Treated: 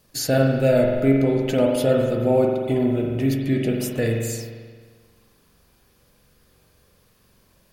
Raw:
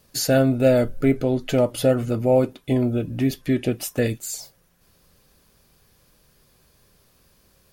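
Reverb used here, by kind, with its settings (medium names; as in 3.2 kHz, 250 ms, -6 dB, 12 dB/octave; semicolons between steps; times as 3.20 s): spring tank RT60 1.6 s, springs 44 ms, chirp 75 ms, DRR 0 dB; trim -2 dB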